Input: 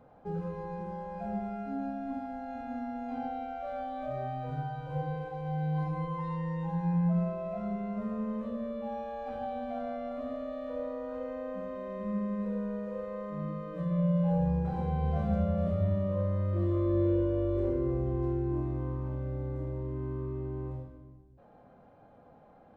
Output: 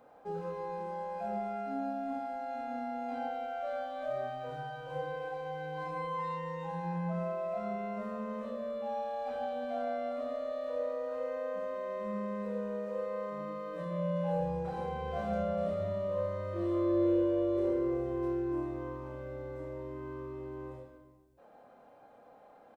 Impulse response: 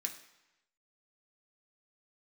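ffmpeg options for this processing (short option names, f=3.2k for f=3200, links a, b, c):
-filter_complex "[0:a]bass=f=250:g=-14,treble=f=4k:g=4,asplit=2[a][b];[b]adelay=29,volume=-7.5dB[c];[a][c]amix=inputs=2:normalize=0,asplit=2[d][e];[1:a]atrim=start_sample=2205[f];[e][f]afir=irnorm=-1:irlink=0,volume=-11dB[g];[d][g]amix=inputs=2:normalize=0"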